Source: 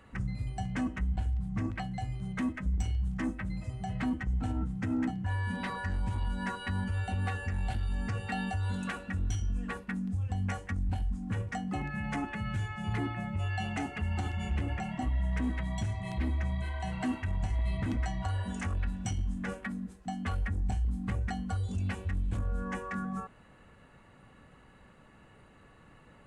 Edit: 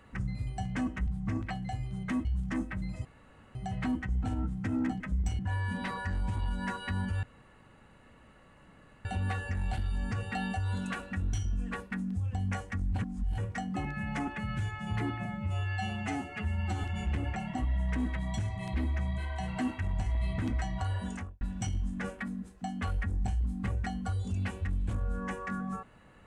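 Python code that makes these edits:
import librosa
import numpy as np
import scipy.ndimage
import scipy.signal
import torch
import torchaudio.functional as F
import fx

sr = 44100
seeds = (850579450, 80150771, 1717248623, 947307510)

y = fx.studio_fade_out(x, sr, start_s=18.5, length_s=0.35)
y = fx.edit(y, sr, fx.cut(start_s=1.07, length_s=0.29),
    fx.move(start_s=2.54, length_s=0.39, to_s=5.18),
    fx.insert_room_tone(at_s=3.73, length_s=0.5),
    fx.insert_room_tone(at_s=7.02, length_s=1.82),
    fx.reverse_span(start_s=10.96, length_s=0.39),
    fx.stretch_span(start_s=13.22, length_s=1.06, factor=1.5), tone=tone)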